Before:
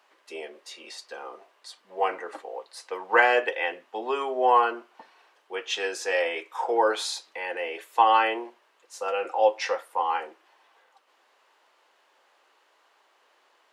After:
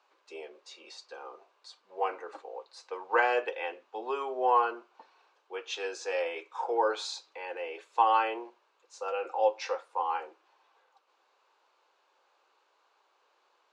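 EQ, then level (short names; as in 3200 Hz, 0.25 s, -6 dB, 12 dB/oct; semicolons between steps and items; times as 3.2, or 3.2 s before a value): speaker cabinet 430–7000 Hz, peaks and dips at 650 Hz -5 dB, 1900 Hz -10 dB, 3100 Hz -6 dB, 5300 Hz -3 dB; bell 1200 Hz -3.5 dB 2.5 oct; high shelf 5100 Hz -6.5 dB; 0.0 dB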